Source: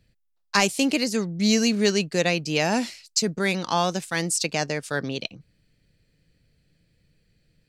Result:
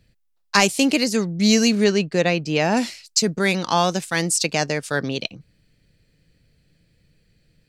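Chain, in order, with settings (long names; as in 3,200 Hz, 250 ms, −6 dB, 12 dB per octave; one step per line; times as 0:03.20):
0:01.84–0:02.77: low-pass filter 2,600 Hz 6 dB per octave
level +4 dB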